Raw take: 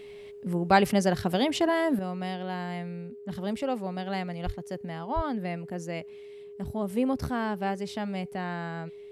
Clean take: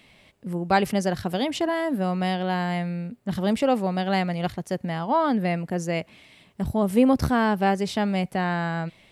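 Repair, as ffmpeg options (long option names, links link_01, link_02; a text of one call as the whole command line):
ffmpeg -i in.wav -filter_complex "[0:a]bandreject=frequency=410:width=30,asplit=3[link_01][link_02][link_03];[link_01]afade=type=out:start_time=4.45:duration=0.02[link_04];[link_02]highpass=frequency=140:width=0.5412,highpass=frequency=140:width=1.3066,afade=type=in:start_time=4.45:duration=0.02,afade=type=out:start_time=4.57:duration=0.02[link_05];[link_03]afade=type=in:start_time=4.57:duration=0.02[link_06];[link_04][link_05][link_06]amix=inputs=3:normalize=0,asplit=3[link_07][link_08][link_09];[link_07]afade=type=out:start_time=5.15:duration=0.02[link_10];[link_08]highpass=frequency=140:width=0.5412,highpass=frequency=140:width=1.3066,afade=type=in:start_time=5.15:duration=0.02,afade=type=out:start_time=5.27:duration=0.02[link_11];[link_09]afade=type=in:start_time=5.27:duration=0.02[link_12];[link_10][link_11][link_12]amix=inputs=3:normalize=0,asetnsamples=nb_out_samples=441:pad=0,asendcmd='1.99 volume volume 8.5dB',volume=0dB" out.wav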